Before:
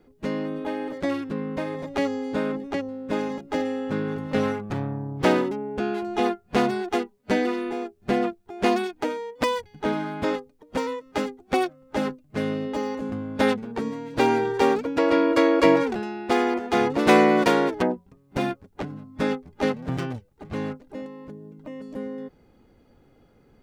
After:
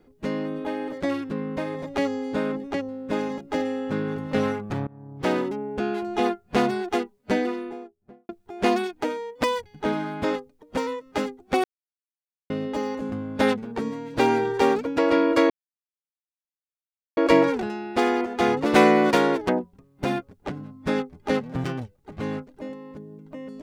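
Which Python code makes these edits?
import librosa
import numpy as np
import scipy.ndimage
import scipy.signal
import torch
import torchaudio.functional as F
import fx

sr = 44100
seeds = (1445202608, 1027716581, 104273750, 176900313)

y = fx.studio_fade_out(x, sr, start_s=7.17, length_s=1.12)
y = fx.edit(y, sr, fx.fade_in_from(start_s=4.87, length_s=0.72, floor_db=-23.0),
    fx.silence(start_s=11.64, length_s=0.86),
    fx.insert_silence(at_s=15.5, length_s=1.67), tone=tone)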